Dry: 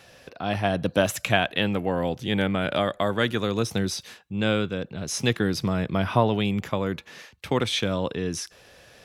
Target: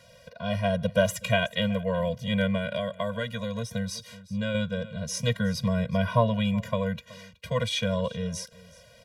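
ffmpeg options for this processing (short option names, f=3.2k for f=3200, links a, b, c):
-filter_complex "[0:a]aecho=1:1:373:0.0891,asettb=1/sr,asplit=3[a][b][c];[a]atrim=end=2.574[d];[b]atrim=start=2.57:end=4.55,asetpts=PTS-STARTPTS,afade=t=in:d=0.004:c=qsin,afade=t=out:st=1.976:d=0.004:c=qsin,acompressor=threshold=-26dB:ratio=2.5[e];[c]atrim=start=4.546[f];[d][e]acrossfade=d=0.004:c1=hsin:c2=qsin[g];[g][f]acrossfade=d=0.004:c1=qsin:c2=hsin,afftfilt=real='re*eq(mod(floor(b*sr/1024/230),2),0)':imag='im*eq(mod(floor(b*sr/1024/230),2),0)':win_size=1024:overlap=0.75"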